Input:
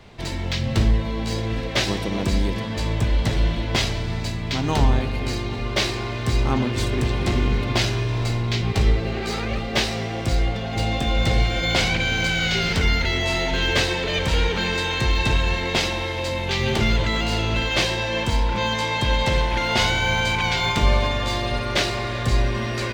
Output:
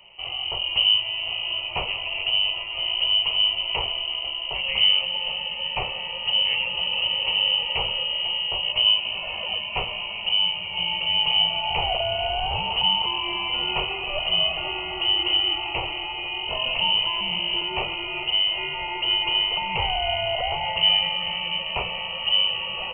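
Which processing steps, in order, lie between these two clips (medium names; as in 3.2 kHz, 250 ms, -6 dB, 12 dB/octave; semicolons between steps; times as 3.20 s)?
frequency inversion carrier 3 kHz; static phaser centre 660 Hz, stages 4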